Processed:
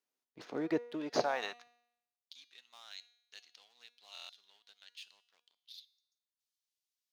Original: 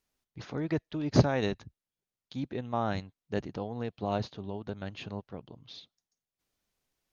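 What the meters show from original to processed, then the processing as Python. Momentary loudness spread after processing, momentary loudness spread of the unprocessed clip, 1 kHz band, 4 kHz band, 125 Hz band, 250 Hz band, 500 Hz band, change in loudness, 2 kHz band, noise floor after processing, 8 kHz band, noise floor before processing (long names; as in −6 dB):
22 LU, 20 LU, −6.0 dB, −2.5 dB, −25.0 dB, −9.5 dB, −6.5 dB, −5.5 dB, −3.5 dB, below −85 dBFS, can't be measured, below −85 dBFS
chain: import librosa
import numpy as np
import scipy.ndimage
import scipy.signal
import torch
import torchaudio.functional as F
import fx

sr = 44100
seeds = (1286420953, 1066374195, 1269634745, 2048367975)

y = fx.leveller(x, sr, passes=1)
y = fx.filter_sweep_highpass(y, sr, from_hz=330.0, to_hz=3800.0, start_s=0.9, end_s=2.16, q=1.2)
y = fx.comb_fb(y, sr, f0_hz=240.0, decay_s=0.78, harmonics='all', damping=0.0, mix_pct=60)
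y = fx.buffer_glitch(y, sr, at_s=(4.13,), block=1024, repeats=6)
y = y * librosa.db_to_amplitude(1.0)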